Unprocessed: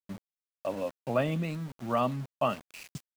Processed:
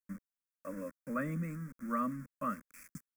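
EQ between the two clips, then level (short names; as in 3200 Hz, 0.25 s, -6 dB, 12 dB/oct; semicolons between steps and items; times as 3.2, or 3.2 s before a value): fixed phaser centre 580 Hz, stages 8; fixed phaser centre 1700 Hz, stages 4; 0.0 dB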